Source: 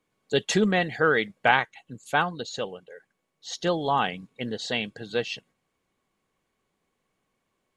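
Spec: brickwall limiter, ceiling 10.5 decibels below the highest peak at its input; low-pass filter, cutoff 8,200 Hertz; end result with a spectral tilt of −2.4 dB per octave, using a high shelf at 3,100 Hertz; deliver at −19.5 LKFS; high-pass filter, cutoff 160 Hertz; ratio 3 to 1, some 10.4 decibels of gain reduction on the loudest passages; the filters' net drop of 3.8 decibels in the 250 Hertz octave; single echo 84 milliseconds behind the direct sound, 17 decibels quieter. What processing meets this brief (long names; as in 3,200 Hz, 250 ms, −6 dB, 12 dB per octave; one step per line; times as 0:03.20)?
high-pass filter 160 Hz
low-pass filter 8,200 Hz
parametric band 250 Hz −4 dB
high-shelf EQ 3,100 Hz +7.5 dB
downward compressor 3 to 1, threshold −27 dBFS
brickwall limiter −21 dBFS
single-tap delay 84 ms −17 dB
level +14.5 dB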